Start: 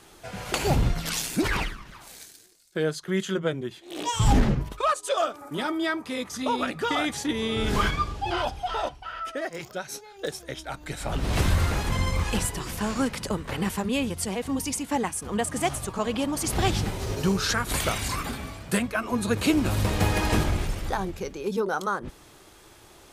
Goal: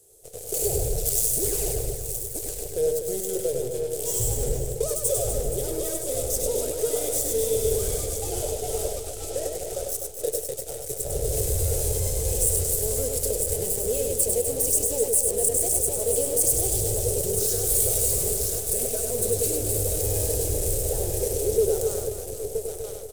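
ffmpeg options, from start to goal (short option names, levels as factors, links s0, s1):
-filter_complex "[0:a]asplit=2[s0][s1];[s1]aecho=0:1:973|1946|2919|3892|4865|5838:0.376|0.188|0.094|0.047|0.0235|0.0117[s2];[s0][s2]amix=inputs=2:normalize=0,alimiter=limit=0.0944:level=0:latency=1:release=15,aeval=exprs='0.0944*(cos(1*acos(clip(val(0)/0.0944,-1,1)))-cos(1*PI/2))+0.0188*(cos(7*acos(clip(val(0)/0.0944,-1,1)))-cos(7*PI/2))+0.00422*(cos(8*acos(clip(val(0)/0.0944,-1,1)))-cos(8*PI/2))':c=same,firequalizer=gain_entry='entry(120,0);entry(190,-16);entry(300,-12);entry(440,10);entry(1000,-23);entry(8000,12)':delay=0.05:min_phase=1,asplit=2[s3][s4];[s4]aecho=0:1:100|250|475|812.5|1319:0.631|0.398|0.251|0.158|0.1[s5];[s3][s5]amix=inputs=2:normalize=0"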